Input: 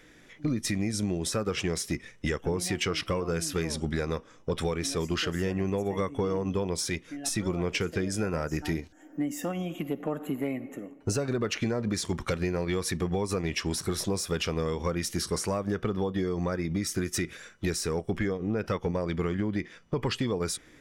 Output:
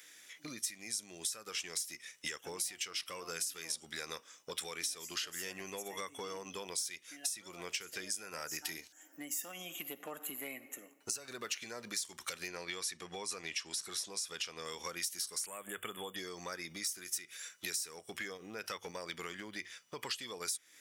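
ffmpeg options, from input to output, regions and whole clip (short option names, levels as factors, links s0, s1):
-filter_complex "[0:a]asettb=1/sr,asplit=3[s0][s1][s2];[s0]atrim=end=12.484[s3];[s1]atrim=start=12.48:end=14.65,asetpts=PTS-STARTPTS,afade=t=in:d=0.004:c=qsin,afade=t=out:st=2.166:d=0.004:c=qsin,lowpass=10000,highshelf=f=7800:g=-7[s4];[s2]atrim=start=14.646[s5];[s3][s4]acrossfade=d=0.004:c1=hsin:c2=qsin[s6];[s6][s5]acrossfade=d=0.004:c1=qsin:c2=hsin,asettb=1/sr,asplit=3[s7][s8][s9];[s7]atrim=end=15.464[s10];[s8]atrim=start=15.46:end=16.16,asetpts=PTS-STARTPTS,afade=t=in:d=0.004:c=qsin,afade=t=out:st=0.696:d=0.004:c=qsin,asuperstop=centerf=5000:order=20:qfactor=1.4,highshelf=f=4000:g=9[s11];[s9]atrim=start=16.156[s12];[s10][s11]acrossfade=d=0.004:c1=hsin:c2=qsin[s13];[s13][s12]acrossfade=d=0.004:c1=qsin:c2=hsin,aderivative,bandreject=f=50:t=h:w=6,bandreject=f=100:t=h:w=6,acompressor=threshold=0.00562:ratio=6,volume=2.82"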